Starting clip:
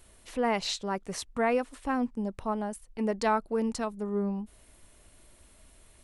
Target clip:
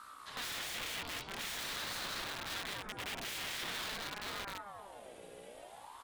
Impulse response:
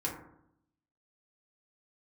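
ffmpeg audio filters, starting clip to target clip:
-filter_complex "[0:a]asettb=1/sr,asplit=3[link_01][link_02][link_03];[link_01]atrim=end=0.974[link_04];[link_02]atrim=start=0.97:end=3.07,asetpts=PTS-STARTPTS,afade=type=in:duration=0.004:curve=qsin,afade=type=out:start_time=2.096:duration=0.004:curve=qsin,highpass=160,lowpass=7700[link_05];[link_03]atrim=start=3.066[link_06];[link_04][link_05]acrossfade=duration=0.004:curve1=hsin:curve2=qsin[link_07];[link_07][link_06]acrossfade=duration=0.004:curve1=qsin:curve2=hsin[link_08];[1:a]atrim=start_sample=2205,atrim=end_sample=3969[link_09];[link_08][link_09]afir=irnorm=-1:irlink=0,acrossover=split=4500[link_10][link_11];[link_11]acompressor=threshold=-55dB:ratio=4:attack=1:release=60[link_12];[link_10][link_12]amix=inputs=2:normalize=0,aecho=1:1:191|382|573|764|955:0.631|0.259|0.106|0.0435|0.0178,aeval=exprs='(mod(25.1*val(0)+1,2)-1)/25.1':channel_layout=same,aeval=exprs='val(0)+0.00355*(sin(2*PI*60*n/s)+sin(2*PI*2*60*n/s)/2+sin(2*PI*3*60*n/s)/3+sin(2*PI*4*60*n/s)/4+sin(2*PI*5*60*n/s)/5)':channel_layout=same,acompressor=threshold=-47dB:ratio=2,equalizer=frequency=2700:width_type=o:width=0.87:gain=9.5,aeval=exprs='val(0)*sin(2*PI*870*n/s+870*0.45/0.47*sin(2*PI*0.47*n/s))':channel_layout=same"

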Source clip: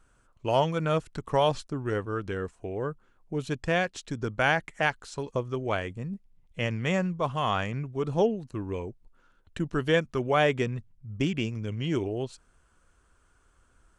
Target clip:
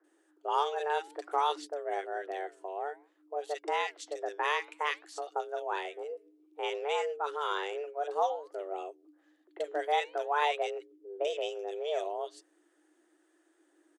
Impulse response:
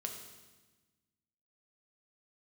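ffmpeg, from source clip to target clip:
-filter_complex "[0:a]afreqshift=290,acrossover=split=210|1700[link_01][link_02][link_03];[link_03]adelay=40[link_04];[link_01]adelay=140[link_05];[link_05][link_02][link_04]amix=inputs=3:normalize=0,flanger=delay=1.5:depth=7:regen=-90:speed=0.56:shape=sinusoidal"

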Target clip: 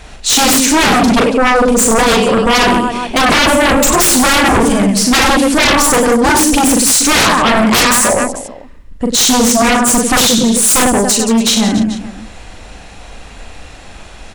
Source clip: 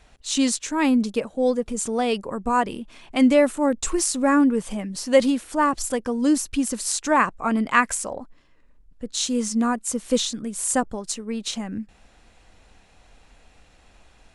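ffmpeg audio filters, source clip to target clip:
ffmpeg -i in.wav -af "aecho=1:1:40|96|174.4|284.2|437.8:0.631|0.398|0.251|0.158|0.1,aeval=exprs='0.75*sin(PI/2*8.91*val(0)/0.75)':channel_layout=same,volume=-4dB" out.wav

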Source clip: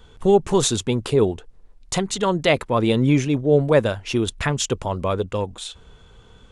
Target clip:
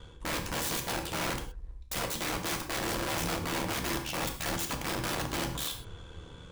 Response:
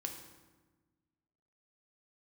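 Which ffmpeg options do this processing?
-filter_complex "[0:a]areverse,acompressor=threshold=-27dB:ratio=6,areverse,aeval=exprs='val(0)*sin(2*PI*38*n/s)':channel_layout=same,atempo=1,aeval=exprs='(mod(35.5*val(0)+1,2)-1)/35.5':channel_layout=same[link_01];[1:a]atrim=start_sample=2205,afade=type=out:start_time=0.18:duration=0.01,atrim=end_sample=8379[link_02];[link_01][link_02]afir=irnorm=-1:irlink=0,volume=6dB"

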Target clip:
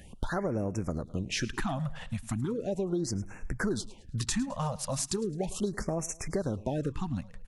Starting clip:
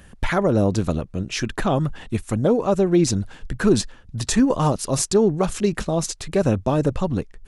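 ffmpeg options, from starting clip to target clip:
ffmpeg -i in.wav -filter_complex "[0:a]acompressor=threshold=-25dB:ratio=6,asplit=2[link_01][link_02];[link_02]aecho=0:1:107|214|321:0.112|0.0449|0.018[link_03];[link_01][link_03]amix=inputs=2:normalize=0,afftfilt=real='re*(1-between(b*sr/1024,320*pow(3900/320,0.5+0.5*sin(2*PI*0.37*pts/sr))/1.41,320*pow(3900/320,0.5+0.5*sin(2*PI*0.37*pts/sr))*1.41))':imag='im*(1-between(b*sr/1024,320*pow(3900/320,0.5+0.5*sin(2*PI*0.37*pts/sr))/1.41,320*pow(3900/320,0.5+0.5*sin(2*PI*0.37*pts/sr))*1.41))':win_size=1024:overlap=0.75,volume=-3dB" out.wav

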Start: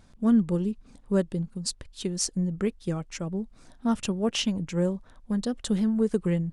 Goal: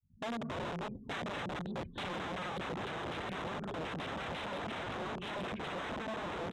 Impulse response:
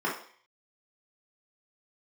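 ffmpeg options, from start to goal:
-filter_complex "[0:a]agate=range=-33dB:threshold=-48dB:ratio=3:detection=peak,acompressor=threshold=-34dB:ratio=12,asplit=2[link_01][link_02];[1:a]atrim=start_sample=2205,adelay=147[link_03];[link_02][link_03]afir=irnorm=-1:irlink=0,volume=-15.5dB[link_04];[link_01][link_04]amix=inputs=2:normalize=0,afftdn=noise_reduction=36:noise_floor=-55,dynaudnorm=framelen=470:gausssize=3:maxgain=8dB,equalizer=frequency=120:width=0.99:gain=10.5,aecho=1:1:869:0.531,aresample=8000,aeval=exprs='(mod(22.4*val(0)+1,2)-1)/22.4':channel_layout=same,aresample=44100,highpass=60,asoftclip=type=tanh:threshold=-29.5dB,adynamicequalizer=threshold=0.00501:dfrequency=1700:dqfactor=0.7:tfrequency=1700:tqfactor=0.7:attack=5:release=100:ratio=0.375:range=2.5:mode=cutabove:tftype=highshelf,volume=-4dB"

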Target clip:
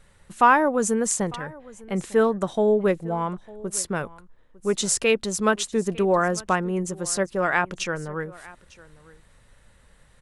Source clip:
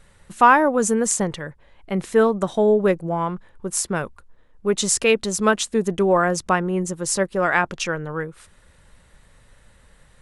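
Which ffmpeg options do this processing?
ffmpeg -i in.wav -af "aecho=1:1:902:0.0841,volume=-3dB" out.wav

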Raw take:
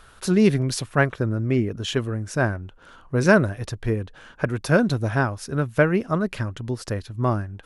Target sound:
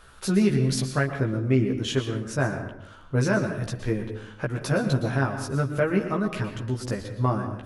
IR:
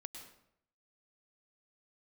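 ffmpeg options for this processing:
-filter_complex "[0:a]alimiter=limit=-11dB:level=0:latency=1:release=167,asplit=2[link_01][link_02];[1:a]atrim=start_sample=2205,adelay=15[link_03];[link_02][link_03]afir=irnorm=-1:irlink=0,volume=3.5dB[link_04];[link_01][link_04]amix=inputs=2:normalize=0,volume=-3.5dB"

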